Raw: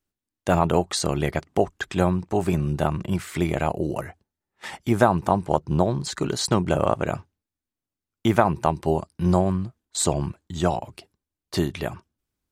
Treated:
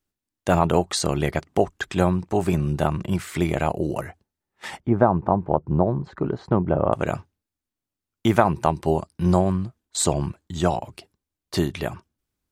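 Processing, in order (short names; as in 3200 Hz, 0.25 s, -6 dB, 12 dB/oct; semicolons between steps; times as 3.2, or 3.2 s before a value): 4.8–6.93 LPF 1100 Hz 12 dB/oct; gain +1 dB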